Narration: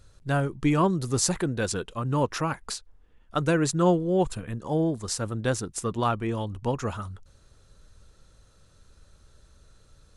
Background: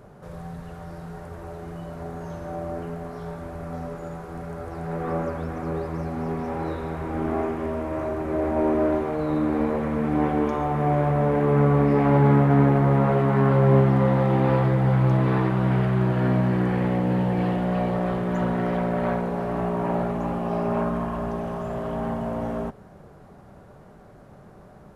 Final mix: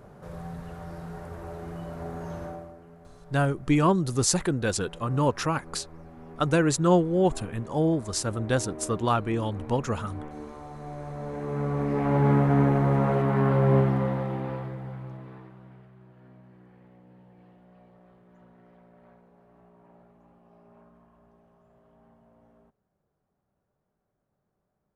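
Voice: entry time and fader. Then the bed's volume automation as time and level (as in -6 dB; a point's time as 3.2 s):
3.05 s, +1.0 dB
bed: 2.44 s -1.5 dB
2.77 s -17.5 dB
10.92 s -17.5 dB
12.3 s -3.5 dB
13.8 s -3.5 dB
15.94 s -31.5 dB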